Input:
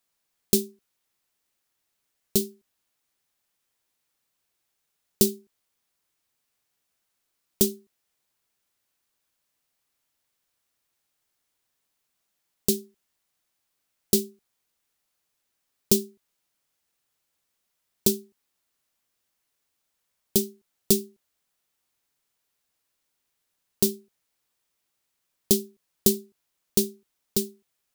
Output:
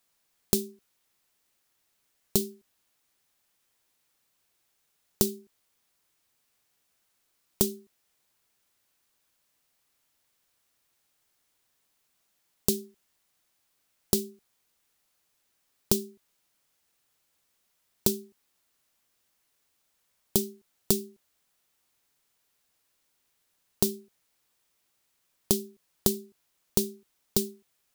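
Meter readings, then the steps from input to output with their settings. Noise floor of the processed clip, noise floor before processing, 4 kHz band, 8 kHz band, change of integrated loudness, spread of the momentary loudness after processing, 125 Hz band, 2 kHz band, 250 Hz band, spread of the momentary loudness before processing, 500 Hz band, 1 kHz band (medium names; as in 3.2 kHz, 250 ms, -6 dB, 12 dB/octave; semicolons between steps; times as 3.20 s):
-74 dBFS, -78 dBFS, -3.5 dB, -3.5 dB, -4.0 dB, 14 LU, -1.5 dB, -1.5 dB, -4.0 dB, 11 LU, -4.0 dB, +6.0 dB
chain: compression 6:1, threshold -25 dBFS, peak gain reduction 11 dB; trim +4 dB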